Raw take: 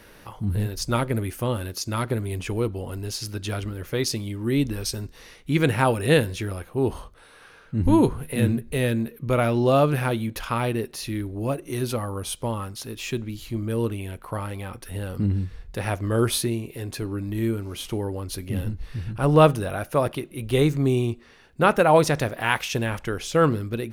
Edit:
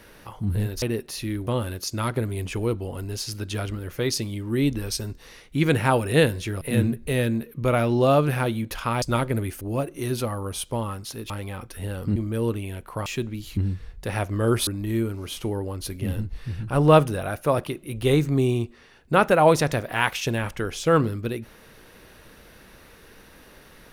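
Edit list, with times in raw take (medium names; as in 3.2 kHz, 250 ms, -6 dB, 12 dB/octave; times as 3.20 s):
0.82–1.41 s: swap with 10.67–11.32 s
6.55–8.26 s: delete
13.01–13.52 s: swap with 14.42–15.28 s
16.38–17.15 s: delete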